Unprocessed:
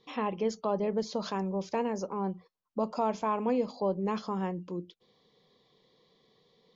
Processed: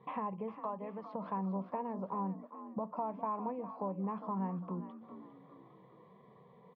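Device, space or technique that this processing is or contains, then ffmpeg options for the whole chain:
bass amplifier: -filter_complex "[0:a]acompressor=threshold=0.00447:ratio=4,highpass=71,equalizer=f=130:t=q:w=4:g=9,equalizer=f=190:t=q:w=4:g=7,equalizer=f=310:t=q:w=4:g=-9,equalizer=f=670:t=q:w=4:g=4,equalizer=f=990:t=q:w=4:g=10,equalizer=f=1500:t=q:w=4:g=-5,lowpass=f=2000:w=0.5412,lowpass=f=2000:w=1.3066,asettb=1/sr,asplit=3[s0][s1][s2];[s0]atrim=end=0.544[s3];[s1]atrim=start=0.54:end=1.12,asetpts=PTS-STARTPTS,afade=t=in:d=0.004:c=qsin,afade=t=out:st=0.576:d=0.004:c=qsin,tiltshelf=f=870:g=-7.5[s4];[s2]atrim=start=1.116[s5];[s3][s4]acrossfade=d=0.004:c1=hsin:c2=qsin[s6];[s6][s5]acrossfade=d=0.004:c1=qsin:c2=hsin,asplit=5[s7][s8][s9][s10][s11];[s8]adelay=404,afreqshift=48,volume=0.251[s12];[s9]adelay=808,afreqshift=96,volume=0.0977[s13];[s10]adelay=1212,afreqshift=144,volume=0.038[s14];[s11]adelay=1616,afreqshift=192,volume=0.015[s15];[s7][s12][s13][s14][s15]amix=inputs=5:normalize=0,volume=1.78"

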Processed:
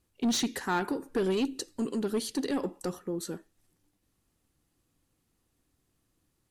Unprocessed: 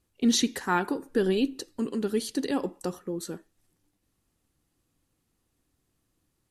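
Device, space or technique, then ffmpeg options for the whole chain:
saturation between pre-emphasis and de-emphasis: -filter_complex "[0:a]highshelf=f=5600:g=6.5,asoftclip=type=tanh:threshold=0.075,highshelf=f=5600:g=-6.5,asettb=1/sr,asplit=3[s0][s1][s2];[s0]atrim=end=1.224[s3];[s1]atrim=start=1.22:end=2,asetpts=PTS-STARTPTS,afade=t=in:d=0.004:c=qsin,afade=t=out:st=0.776:d=0.004:c=qsin,equalizer=f=7400:w=1.1:g=5.5[s4];[s2]atrim=start=1.996[s5];[s3][s4]acrossfade=d=0.004:c1=hsin:c2=qsin[s6];[s6][s5]acrossfade=d=0.004:c1=qsin:c2=hsin"

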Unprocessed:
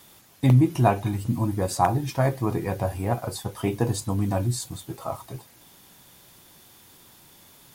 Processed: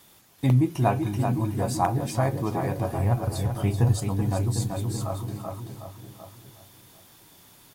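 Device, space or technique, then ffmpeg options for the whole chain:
ducked delay: -filter_complex "[0:a]asplit=3[s0][s1][s2];[s0]afade=t=out:st=2.98:d=0.02[s3];[s1]asubboost=boost=5:cutoff=150,afade=t=in:st=2.98:d=0.02,afade=t=out:st=3.97:d=0.02[s4];[s2]afade=t=in:st=3.97:d=0.02[s5];[s3][s4][s5]amix=inputs=3:normalize=0,asplit=2[s6][s7];[s7]adelay=752,lowpass=f=1200:p=1,volume=0.398,asplit=2[s8][s9];[s9]adelay=752,lowpass=f=1200:p=1,volume=0.23,asplit=2[s10][s11];[s11]adelay=752,lowpass=f=1200:p=1,volume=0.23[s12];[s6][s8][s10][s12]amix=inputs=4:normalize=0,asplit=3[s13][s14][s15];[s14]adelay=383,volume=0.708[s16];[s15]apad=whole_len=387072[s17];[s16][s17]sidechaincompress=threshold=0.0631:ratio=8:attack=16:release=207[s18];[s13][s18]amix=inputs=2:normalize=0,volume=0.708"

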